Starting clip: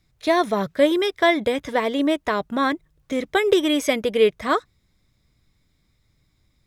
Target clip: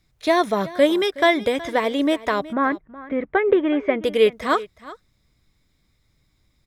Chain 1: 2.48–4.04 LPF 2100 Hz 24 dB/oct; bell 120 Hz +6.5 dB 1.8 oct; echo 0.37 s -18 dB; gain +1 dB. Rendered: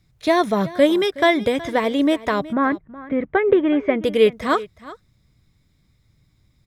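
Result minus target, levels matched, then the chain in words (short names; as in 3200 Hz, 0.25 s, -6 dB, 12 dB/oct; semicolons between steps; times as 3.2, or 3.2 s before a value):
125 Hz band +4.5 dB
2.48–4.04 LPF 2100 Hz 24 dB/oct; bell 120 Hz -2.5 dB 1.8 oct; echo 0.37 s -18 dB; gain +1 dB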